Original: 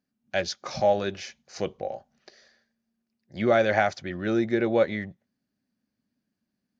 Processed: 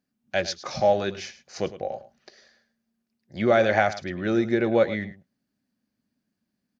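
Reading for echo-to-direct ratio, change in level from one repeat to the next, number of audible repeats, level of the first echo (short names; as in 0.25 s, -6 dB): -15.0 dB, no steady repeat, 1, -15.0 dB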